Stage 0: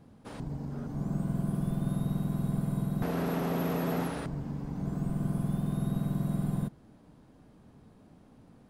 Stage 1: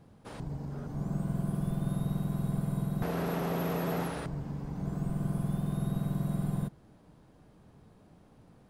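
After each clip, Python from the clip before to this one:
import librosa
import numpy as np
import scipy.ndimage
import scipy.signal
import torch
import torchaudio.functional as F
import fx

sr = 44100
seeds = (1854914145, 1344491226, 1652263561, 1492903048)

y = fx.peak_eq(x, sr, hz=250.0, db=-6.5, octaves=0.42)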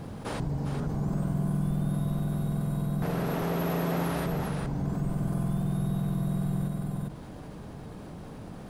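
y = fx.rider(x, sr, range_db=5, speed_s=2.0)
y = y + 10.0 ** (-5.0 / 20.0) * np.pad(y, (int(401 * sr / 1000.0), 0))[:len(y)]
y = fx.env_flatten(y, sr, amount_pct=50)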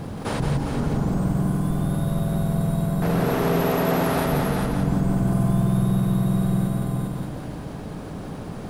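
y = fx.echo_feedback(x, sr, ms=173, feedback_pct=47, wet_db=-4)
y = y * librosa.db_to_amplitude(7.0)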